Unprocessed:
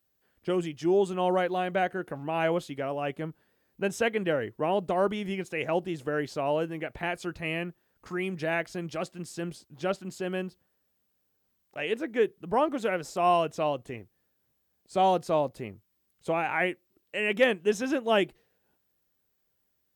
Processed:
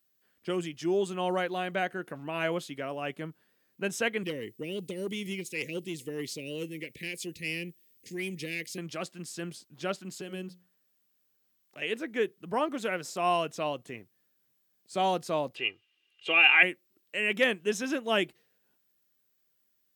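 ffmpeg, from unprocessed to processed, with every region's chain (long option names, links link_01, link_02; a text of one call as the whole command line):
ffmpeg -i in.wav -filter_complex "[0:a]asettb=1/sr,asplit=3[link_01][link_02][link_03];[link_01]atrim=end=4.234[link_04];[link_02]atrim=start=4.23:end=8.78,asetpts=PTS-STARTPTS,afade=type=in:duration=0.004:curve=qsin,afade=type=out:start_time=4.546:duration=0.004:curve=qsin,asuperstop=centerf=1000:order=12:qfactor=0.7,highshelf=frequency=6100:gain=10,aeval=exprs='(tanh(12.6*val(0)+0.2)-tanh(0.2))/12.6':channel_layout=same[link_05];[link_03]atrim=start=8.776[link_06];[link_04][link_05]acrossfade=duration=0.004:curve1=hsin:curve2=qsin[link_07];[link_07][link_06]acrossfade=duration=0.004:curve1=qsin:curve2=hsin,asettb=1/sr,asplit=3[link_08][link_09][link_10];[link_08]atrim=end=10.214[link_11];[link_09]atrim=start=10.21:end=11.82,asetpts=PTS-STARTPTS,afade=type=in:duration=0.004:curve=qsin,afade=type=out:start_time=1.606:duration=0.004:curve=qsin,bandreject=frequency=60:width_type=h:width=6,bandreject=frequency=120:width_type=h:width=6,bandreject=frequency=180:width_type=h:width=6,bandreject=frequency=240:width_type=h:width=6,bandreject=frequency=300:width_type=h:width=6,bandreject=frequency=360:width_type=h:width=6,bandreject=frequency=420:width_type=h:width=6,bandreject=frequency=480:width_type=h:width=6,bandreject=frequency=540:width_type=h:width=6,acrossover=split=450|3000[link_12][link_13][link_14];[link_13]acompressor=threshold=-46dB:ratio=6:attack=3.2:release=140:knee=2.83:detection=peak[link_15];[link_12][link_15][link_14]amix=inputs=3:normalize=0[link_16];[link_10]atrim=start=11.816[link_17];[link_11][link_16]acrossfade=duration=0.004:curve1=hsin:curve2=qsin[link_18];[link_18][link_17]acrossfade=duration=0.004:curve1=qsin:curve2=hsin,asettb=1/sr,asplit=3[link_19][link_20][link_21];[link_19]atrim=end=15.554[link_22];[link_20]atrim=start=15.55:end=16.63,asetpts=PTS-STARTPTS,afade=type=in:duration=0.004:curve=qsin,afade=type=out:start_time=1.076:duration=0.004:curve=qsin,lowpass=frequency=2800:width_type=q:width=11,aemphasis=mode=production:type=bsi,aecho=1:1:2.5:0.65,atrim=end_sample=47628[link_23];[link_21]atrim=start=16.626[link_24];[link_22][link_23]acrossfade=duration=0.004:curve1=hsin:curve2=qsin[link_25];[link_25][link_24]acrossfade=duration=0.004:curve1=qsin:curve2=hsin,highpass=180,equalizer=frequency=550:width_type=o:width=2.7:gain=-7,bandreject=frequency=820:width=14,volume=2.5dB" out.wav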